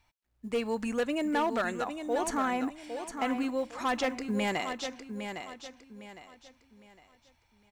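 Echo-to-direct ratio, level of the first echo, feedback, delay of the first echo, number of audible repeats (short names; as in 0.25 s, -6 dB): -7.5 dB, -8.0 dB, 33%, 0.808 s, 3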